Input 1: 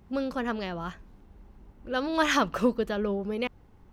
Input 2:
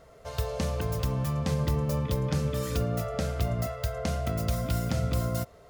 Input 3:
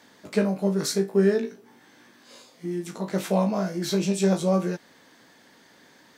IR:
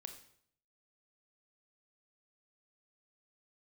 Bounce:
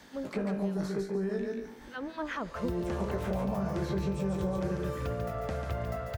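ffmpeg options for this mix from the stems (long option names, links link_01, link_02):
-filter_complex "[0:a]acrossover=split=1000[link_01][link_02];[link_01]aeval=exprs='val(0)*(1-1/2+1/2*cos(2*PI*4.9*n/s))':channel_layout=same[link_03];[link_02]aeval=exprs='val(0)*(1-1/2-1/2*cos(2*PI*4.9*n/s))':channel_layout=same[link_04];[link_03][link_04]amix=inputs=2:normalize=0,volume=-5dB,asplit=2[link_05][link_06];[link_06]volume=-20.5dB[link_07];[1:a]equalizer=frequency=190:width_type=o:width=1.7:gain=-8,adelay=2300,volume=0dB,asplit=2[link_08][link_09];[link_09]volume=-8dB[link_10];[2:a]acontrast=75,alimiter=limit=-12.5dB:level=0:latency=1:release=147,volume=-6.5dB,asplit=2[link_11][link_12];[link_12]volume=-4dB[link_13];[link_07][link_10][link_13]amix=inputs=3:normalize=0,aecho=0:1:142|284|426:1|0.17|0.0289[link_14];[link_05][link_08][link_11][link_14]amix=inputs=4:normalize=0,acrossover=split=97|2300[link_15][link_16][link_17];[link_15]acompressor=threshold=-40dB:ratio=4[link_18];[link_16]acompressor=threshold=-30dB:ratio=4[link_19];[link_17]acompressor=threshold=-58dB:ratio=4[link_20];[link_18][link_19][link_20]amix=inputs=3:normalize=0"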